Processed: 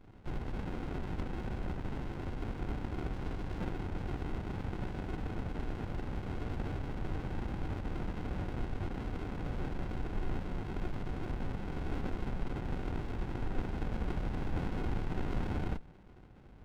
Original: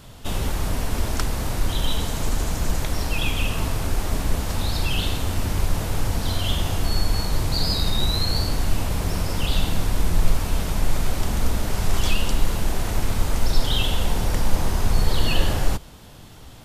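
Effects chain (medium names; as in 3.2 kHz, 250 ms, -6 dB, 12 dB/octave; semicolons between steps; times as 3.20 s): cascade formant filter a; sliding maximum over 65 samples; trim +10.5 dB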